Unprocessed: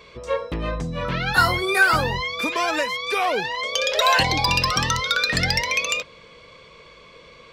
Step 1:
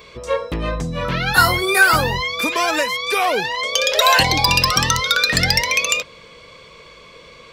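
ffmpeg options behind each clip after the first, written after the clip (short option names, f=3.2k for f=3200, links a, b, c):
-af "highshelf=f=8.8k:g=11.5,volume=3.5dB"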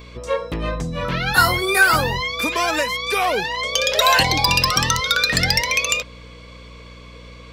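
-af "aeval=exprs='val(0)+0.0112*(sin(2*PI*60*n/s)+sin(2*PI*2*60*n/s)/2+sin(2*PI*3*60*n/s)/3+sin(2*PI*4*60*n/s)/4+sin(2*PI*5*60*n/s)/5)':c=same,volume=-1.5dB"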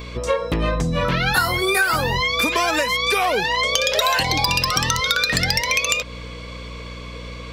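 -af "acompressor=threshold=-23dB:ratio=6,volume=6.5dB"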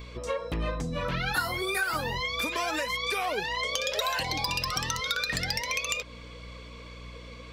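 -af "flanger=delay=0.4:depth=4.2:regen=67:speed=1.7:shape=triangular,volume=-6dB"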